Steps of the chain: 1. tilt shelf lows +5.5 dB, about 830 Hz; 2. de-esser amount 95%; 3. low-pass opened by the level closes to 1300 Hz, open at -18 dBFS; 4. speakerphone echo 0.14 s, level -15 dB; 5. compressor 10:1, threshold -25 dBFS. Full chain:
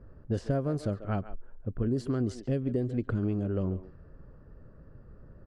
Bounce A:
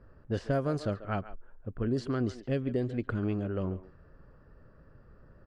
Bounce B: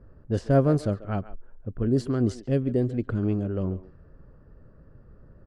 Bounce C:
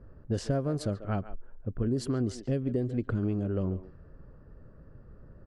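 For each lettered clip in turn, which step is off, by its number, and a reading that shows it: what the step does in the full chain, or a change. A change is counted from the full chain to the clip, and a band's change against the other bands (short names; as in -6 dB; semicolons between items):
1, momentary loudness spread change +2 LU; 5, mean gain reduction 2.5 dB; 2, 4 kHz band +6.0 dB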